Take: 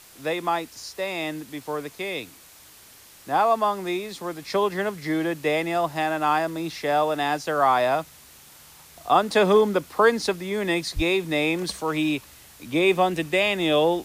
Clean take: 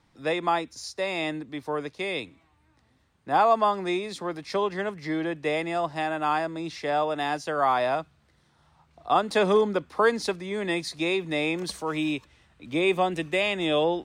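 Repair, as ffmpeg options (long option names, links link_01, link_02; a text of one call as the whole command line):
ffmpeg -i in.wav -filter_complex "[0:a]asplit=3[link_01][link_02][link_03];[link_01]afade=type=out:start_time=10.95:duration=0.02[link_04];[link_02]highpass=frequency=140:width=0.5412,highpass=frequency=140:width=1.3066,afade=type=in:start_time=10.95:duration=0.02,afade=type=out:start_time=11.07:duration=0.02[link_05];[link_03]afade=type=in:start_time=11.07:duration=0.02[link_06];[link_04][link_05][link_06]amix=inputs=3:normalize=0,afwtdn=0.004,asetnsamples=nb_out_samples=441:pad=0,asendcmd='4.42 volume volume -3.5dB',volume=0dB" out.wav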